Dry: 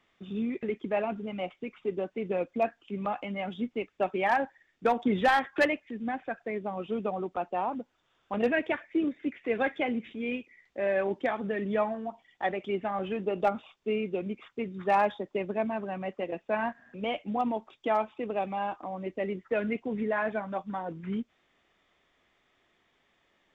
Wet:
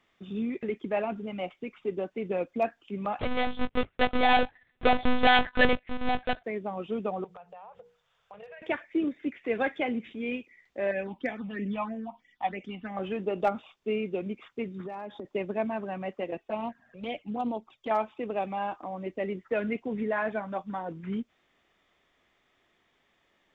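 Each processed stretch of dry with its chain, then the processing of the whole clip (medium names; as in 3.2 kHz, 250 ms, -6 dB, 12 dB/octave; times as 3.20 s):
3.19–6.44 s: square wave that keeps the level + waveshaping leveller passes 1 + monotone LPC vocoder at 8 kHz 250 Hz
7.24–8.62 s: Chebyshev band-stop 180–430 Hz, order 3 + hum notches 60/120/180/240/300/360/420/480 Hz + compression 8:1, threshold -44 dBFS
10.91–12.97 s: phase shifter stages 6, 3.1 Hz, lowest notch 410–1200 Hz + comb 4 ms, depth 39%
14.80–15.25 s: peaking EQ 280 Hz +10.5 dB 1.8 oct + compression 12:1, threshold -35 dBFS
16.37–17.91 s: dynamic bell 1.7 kHz, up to -4 dB, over -48 dBFS, Q 1.4 + touch-sensitive flanger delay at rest 2.9 ms, full sweep at -26 dBFS + loudspeaker Doppler distortion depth 0.15 ms
whole clip: none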